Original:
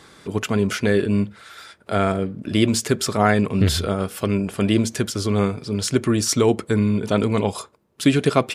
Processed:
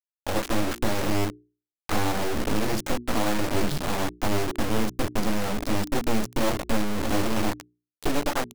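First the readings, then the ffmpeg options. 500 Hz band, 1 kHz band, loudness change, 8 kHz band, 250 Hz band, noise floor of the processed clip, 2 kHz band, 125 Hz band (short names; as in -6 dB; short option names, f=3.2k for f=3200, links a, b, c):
-7.5 dB, -2.5 dB, -6.5 dB, -7.5 dB, -7.5 dB, under -85 dBFS, -3.5 dB, -9.5 dB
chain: -filter_complex "[0:a]acrossover=split=190[a][b];[a]dynaudnorm=f=220:g=5:m=16dB[c];[b]highpass=310[d];[c][d]amix=inputs=2:normalize=0,acompressor=threshold=-21dB:ratio=8,lowpass=f=1.4k:p=1,asplit=2[e][f];[f]adelay=16,volume=-9dB[g];[e][g]amix=inputs=2:normalize=0,flanger=delay=17:depth=3.7:speed=1.3,asoftclip=type=tanh:threshold=-19dB,tiltshelf=f=1.1k:g=5.5,aeval=exprs='abs(val(0))':c=same,lowshelf=f=430:g=-9,acrusher=bits=5:mix=0:aa=0.000001,bandreject=f=60:t=h:w=6,bandreject=f=120:t=h:w=6,bandreject=f=180:t=h:w=6,bandreject=f=240:t=h:w=6,bandreject=f=300:t=h:w=6,bandreject=f=360:t=h:w=6,bandreject=f=420:t=h:w=6,volume=8dB"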